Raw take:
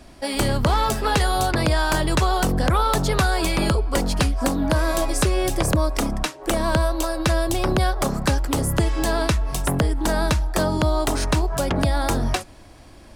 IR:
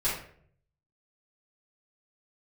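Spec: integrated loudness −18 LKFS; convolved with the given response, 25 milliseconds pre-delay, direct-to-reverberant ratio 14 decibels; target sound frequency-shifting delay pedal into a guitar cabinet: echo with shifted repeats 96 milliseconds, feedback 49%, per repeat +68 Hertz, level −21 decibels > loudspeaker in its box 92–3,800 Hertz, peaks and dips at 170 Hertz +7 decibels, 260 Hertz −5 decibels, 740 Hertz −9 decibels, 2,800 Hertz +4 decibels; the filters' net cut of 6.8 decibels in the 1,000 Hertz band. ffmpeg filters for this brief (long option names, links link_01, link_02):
-filter_complex "[0:a]equalizer=frequency=1000:width_type=o:gain=-5,asplit=2[link_01][link_02];[1:a]atrim=start_sample=2205,adelay=25[link_03];[link_02][link_03]afir=irnorm=-1:irlink=0,volume=-23dB[link_04];[link_01][link_04]amix=inputs=2:normalize=0,asplit=5[link_05][link_06][link_07][link_08][link_09];[link_06]adelay=96,afreqshift=68,volume=-21dB[link_10];[link_07]adelay=192,afreqshift=136,volume=-27.2dB[link_11];[link_08]adelay=288,afreqshift=204,volume=-33.4dB[link_12];[link_09]adelay=384,afreqshift=272,volume=-39.6dB[link_13];[link_05][link_10][link_11][link_12][link_13]amix=inputs=5:normalize=0,highpass=92,equalizer=frequency=170:width_type=q:width=4:gain=7,equalizer=frequency=260:width_type=q:width=4:gain=-5,equalizer=frequency=740:width_type=q:width=4:gain=-9,equalizer=frequency=2800:width_type=q:width=4:gain=4,lowpass=frequency=3800:width=0.5412,lowpass=frequency=3800:width=1.3066,volume=6dB"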